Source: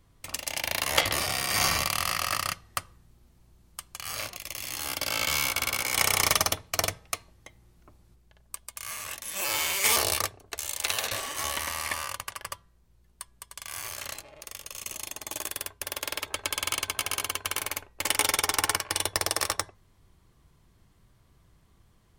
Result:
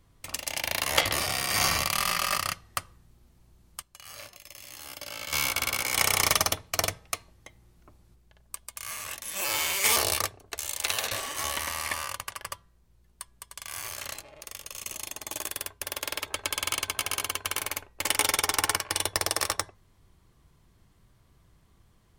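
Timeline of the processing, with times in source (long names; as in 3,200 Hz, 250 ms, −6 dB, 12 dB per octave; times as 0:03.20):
0:01.92–0:02.38: comb filter 5 ms
0:03.82–0:05.33: tuned comb filter 580 Hz, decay 0.2 s, harmonics odd, mix 70%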